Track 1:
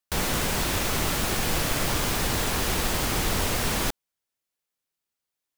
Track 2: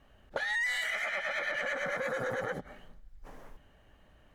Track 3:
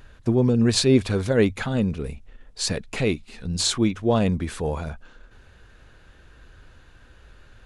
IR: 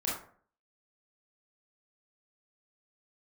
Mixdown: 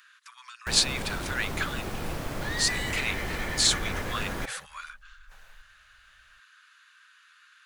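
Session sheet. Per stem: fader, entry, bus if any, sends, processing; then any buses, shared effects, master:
-5.5 dB, 0.55 s, no send, treble shelf 2.2 kHz -12 dB
+2.5 dB, 2.05 s, no send, amplifier tone stack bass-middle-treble 10-0-10
+1.0 dB, 0.00 s, no send, steep high-pass 1.1 kHz 72 dB/octave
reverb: none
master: none

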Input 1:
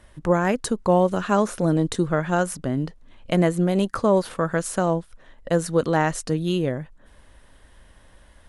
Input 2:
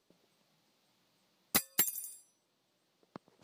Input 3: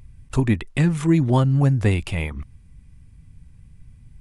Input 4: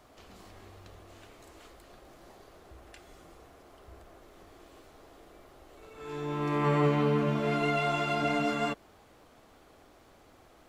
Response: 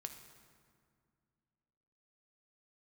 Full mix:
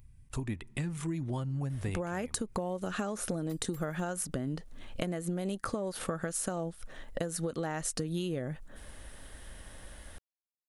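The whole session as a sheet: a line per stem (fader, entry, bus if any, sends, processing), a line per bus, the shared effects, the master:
+3.0 dB, 1.70 s, bus A, no send, band-stop 1 kHz, Q 8.6
-16.5 dB, 1.95 s, no bus, no send, none
-12.0 dB, 0.00 s, bus A, send -18 dB, none
mute
bus A: 0.0 dB, treble shelf 8.3 kHz +11.5 dB; compression, threshold -21 dBFS, peak gain reduction 10.5 dB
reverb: on, RT60 2.1 s, pre-delay 3 ms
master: compression, threshold -31 dBFS, peak gain reduction 12 dB

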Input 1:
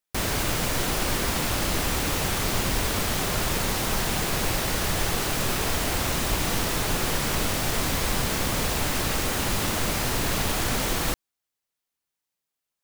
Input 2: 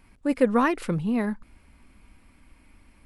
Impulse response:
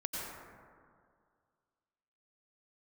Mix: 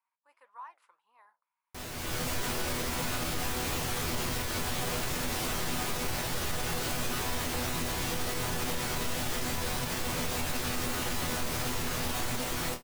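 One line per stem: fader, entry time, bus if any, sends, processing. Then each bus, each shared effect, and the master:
-2.0 dB, 1.60 s, no send, level rider gain up to 12 dB; chord resonator E2 fifth, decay 0.21 s
-15.0 dB, 0.00 s, no send, ladder high-pass 910 Hz, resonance 75%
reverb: none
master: flange 1.7 Hz, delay 2 ms, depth 10 ms, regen -78%; peak limiter -22 dBFS, peak gain reduction 5.5 dB

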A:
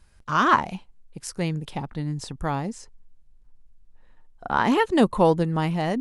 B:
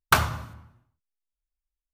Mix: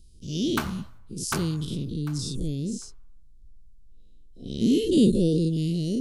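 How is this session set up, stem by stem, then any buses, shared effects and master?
-2.0 dB, 0.00 s, no send, no echo send, every event in the spectrogram widened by 120 ms; inverse Chebyshev band-stop 820–1700 Hz, stop band 60 dB
-6.5 dB, 0.45 s, no send, echo send -5.5 dB, auto duck -10 dB, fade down 1.45 s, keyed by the first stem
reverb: none
echo: feedback delay 748 ms, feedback 17%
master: none

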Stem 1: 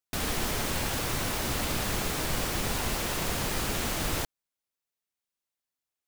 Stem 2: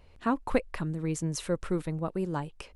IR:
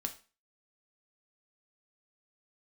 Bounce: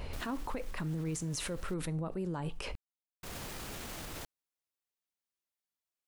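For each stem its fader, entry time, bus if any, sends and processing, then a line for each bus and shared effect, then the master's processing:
-5.5 dB, 0.00 s, muted 1.74–3.23 s, no send, peak limiter -28.5 dBFS, peak gain reduction 11 dB; auto duck -12 dB, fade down 0.55 s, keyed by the second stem
-11.5 dB, 0.00 s, send -7.5 dB, level flattener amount 70%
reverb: on, RT60 0.35 s, pre-delay 4 ms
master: peak limiter -28.5 dBFS, peak gain reduction 10 dB

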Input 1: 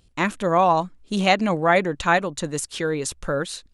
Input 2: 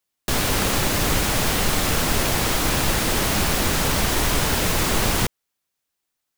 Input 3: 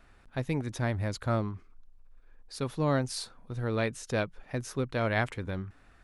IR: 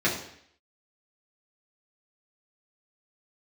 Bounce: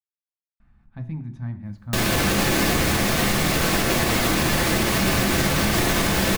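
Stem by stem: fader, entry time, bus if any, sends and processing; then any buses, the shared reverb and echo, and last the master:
mute
-3.0 dB, 1.65 s, send -10.5 dB, none
0.0 dB, 0.60 s, send -16.5 dB, FFT filter 220 Hz 0 dB, 470 Hz -25 dB, 860 Hz -10 dB, 11 kHz -27 dB; gain riding within 4 dB 0.5 s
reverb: on, RT60 0.65 s, pre-delay 3 ms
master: peak limiter -10.5 dBFS, peak gain reduction 4 dB

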